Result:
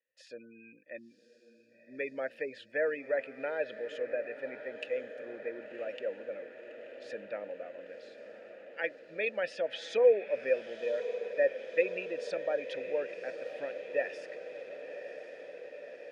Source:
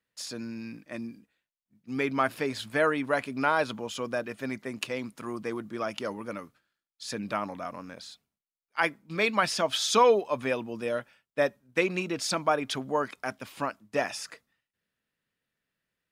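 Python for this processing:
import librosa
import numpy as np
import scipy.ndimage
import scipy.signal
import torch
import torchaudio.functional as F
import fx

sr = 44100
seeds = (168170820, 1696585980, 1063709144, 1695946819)

y = fx.spec_gate(x, sr, threshold_db=-25, keep='strong')
y = fx.vowel_filter(y, sr, vowel='e')
y = fx.echo_diffused(y, sr, ms=1083, feedback_pct=71, wet_db=-11.5)
y = y * 10.0 ** (4.0 / 20.0)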